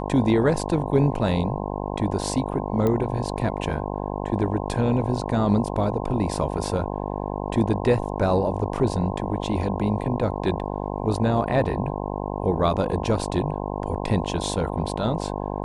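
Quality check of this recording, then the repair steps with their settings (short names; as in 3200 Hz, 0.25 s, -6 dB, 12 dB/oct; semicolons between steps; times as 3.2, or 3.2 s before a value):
buzz 50 Hz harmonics 21 -29 dBFS
2.87 pop -13 dBFS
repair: de-click; de-hum 50 Hz, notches 21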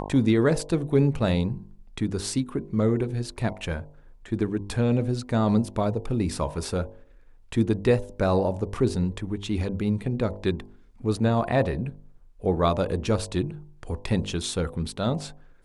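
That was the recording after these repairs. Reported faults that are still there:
none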